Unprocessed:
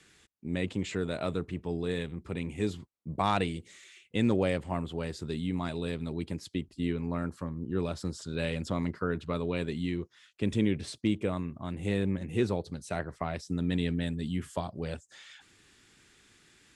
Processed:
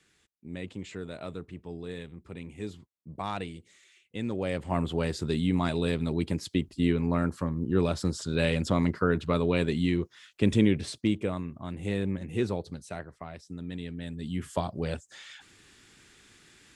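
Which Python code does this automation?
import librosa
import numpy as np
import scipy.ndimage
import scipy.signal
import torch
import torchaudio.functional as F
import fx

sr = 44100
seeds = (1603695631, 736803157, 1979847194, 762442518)

y = fx.gain(x, sr, db=fx.line((4.32, -6.5), (4.82, 6.0), (10.47, 6.0), (11.41, -0.5), (12.73, -0.5), (13.15, -8.0), (13.93, -8.0), (14.57, 4.0)))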